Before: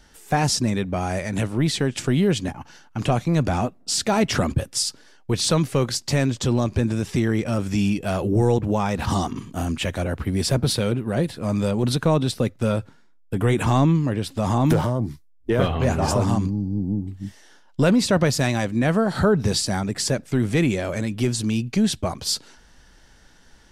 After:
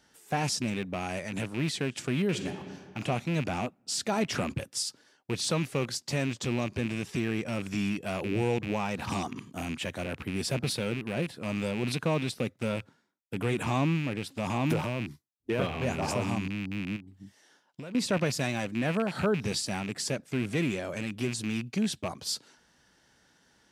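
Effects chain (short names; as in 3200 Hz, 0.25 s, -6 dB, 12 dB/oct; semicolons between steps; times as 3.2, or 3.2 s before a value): rattling part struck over -25 dBFS, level -19 dBFS; 16.96–17.95 compressor 4:1, threshold -34 dBFS, peak gain reduction 16.5 dB; HPF 120 Hz 12 dB/oct; 2.26–2.98 reverb throw, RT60 1.8 s, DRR 6 dB; gain -8.5 dB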